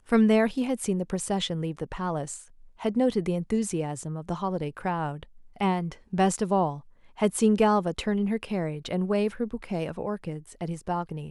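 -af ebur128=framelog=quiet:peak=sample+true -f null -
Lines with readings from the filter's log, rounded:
Integrated loudness:
  I:         -27.7 LUFS
  Threshold: -38.0 LUFS
Loudness range:
  LRA:         3.9 LU
  Threshold: -48.0 LUFS
  LRA low:   -30.0 LUFS
  LRA high:  -26.1 LUFS
Sample peak:
  Peak:       -9.8 dBFS
True peak:
  Peak:       -9.8 dBFS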